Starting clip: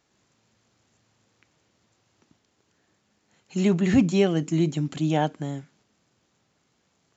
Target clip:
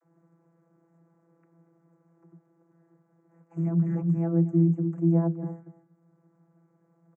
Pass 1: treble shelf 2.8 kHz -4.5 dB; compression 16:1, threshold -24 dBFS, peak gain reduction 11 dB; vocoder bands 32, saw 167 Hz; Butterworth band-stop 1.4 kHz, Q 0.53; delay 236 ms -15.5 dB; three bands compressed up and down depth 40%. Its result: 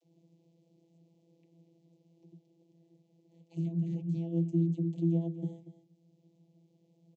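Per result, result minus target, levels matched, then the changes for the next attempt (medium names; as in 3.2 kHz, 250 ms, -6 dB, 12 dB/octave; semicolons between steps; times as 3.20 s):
compression: peak gain reduction +11 dB; 1 kHz band -9.0 dB
remove: compression 16:1, threshold -24 dBFS, peak gain reduction 11 dB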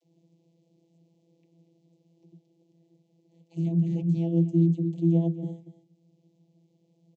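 1 kHz band -7.5 dB
change: Butterworth band-stop 3.7 kHz, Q 0.53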